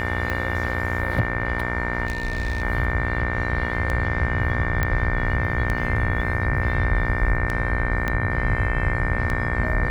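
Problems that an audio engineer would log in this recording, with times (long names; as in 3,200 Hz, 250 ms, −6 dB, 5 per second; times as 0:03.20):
mains buzz 60 Hz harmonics 39 −28 dBFS
scratch tick 33 1/3 rpm −13 dBFS
whistle 1,800 Hz −29 dBFS
0:02.06–0:02.63: clipping −20.5 dBFS
0:04.83: click −9 dBFS
0:08.08: click −11 dBFS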